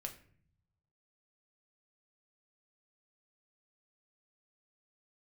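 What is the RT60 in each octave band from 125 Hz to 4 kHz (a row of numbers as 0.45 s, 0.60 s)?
1.5 s, 1.1 s, 0.60 s, 0.50 s, 0.55 s, 0.35 s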